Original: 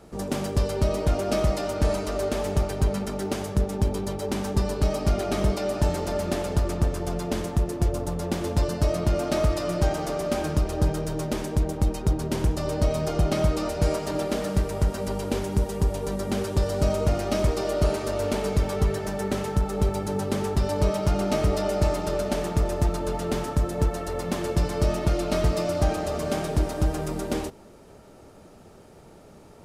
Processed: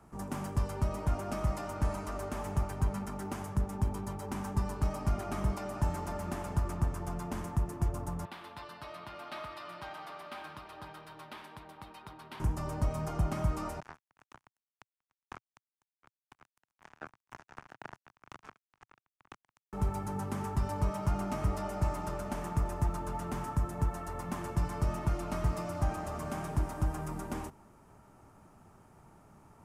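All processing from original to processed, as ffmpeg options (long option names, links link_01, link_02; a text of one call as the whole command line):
ffmpeg -i in.wav -filter_complex "[0:a]asettb=1/sr,asplit=3[link_01][link_02][link_03];[link_01]atrim=end=8.254[link_04];[link_02]atrim=start=8.25:end=12.4,asetpts=PTS-STARTPTS,afade=type=in:duration=0.004:curve=qsin,afade=type=out:start_time=4.146:duration=0.004:curve=qsin,highpass=frequency=1500:poles=1,highshelf=frequency=5100:width_type=q:width=3:gain=-10[link_05];[link_03]atrim=start=12.396[link_06];[link_04][link_05]acrossfade=duration=0.004:curve1=hsin:curve2=qsin[link_07];[link_07][link_06]acrossfade=duration=0.004:curve1=qsin:curve2=hsin,asettb=1/sr,asplit=3[link_08][link_09][link_10];[link_08]atrim=end=13.804[link_11];[link_09]atrim=start=13.8:end=19.73,asetpts=PTS-STARTPTS,afade=type=in:duration=0.004:curve=qsin,afade=type=out:start_time=5.926:duration=0.004:curve=qsin,highpass=440,equalizer=frequency=480:width_type=q:width=4:gain=6,equalizer=frequency=1300:width_type=q:width=4:gain=-9,equalizer=frequency=1800:width_type=q:width=4:gain=-9,equalizer=frequency=3800:width_type=q:width=4:gain=-5,lowpass=frequency=4700:width=0.5412,lowpass=frequency=4700:width=1.3066,aecho=1:1:2.7:0.78,atrim=end_sample=261513,acrusher=bits=2:mix=0:aa=0.5[link_12];[link_10]atrim=start=19.726[link_13];[link_11][link_12]acrossfade=duration=0.004:curve1=hsin:curve2=qsin[link_14];[link_14][link_13]acrossfade=duration=0.004:curve1=qsin:curve2=hsin,equalizer=frequency=120:width_type=o:width=0.77:gain=3.5,acrossover=split=170[link_15][link_16];[link_16]acompressor=threshold=-22dB:ratio=6[link_17];[link_15][link_17]amix=inputs=2:normalize=0,equalizer=frequency=500:width_type=o:width=1:gain=-10,equalizer=frequency=1000:width_type=o:width=1:gain=8,equalizer=frequency=4000:width_type=o:width=1:gain=-10,volume=-8dB" out.wav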